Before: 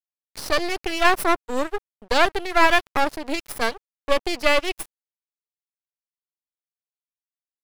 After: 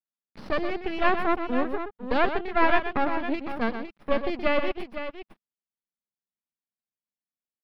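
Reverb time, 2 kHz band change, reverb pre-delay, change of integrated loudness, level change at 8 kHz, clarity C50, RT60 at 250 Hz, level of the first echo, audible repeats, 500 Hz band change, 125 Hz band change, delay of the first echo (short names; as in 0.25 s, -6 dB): none, -6.5 dB, none, -5.0 dB, under -25 dB, none, none, -9.0 dB, 2, -3.5 dB, -0.5 dB, 0.124 s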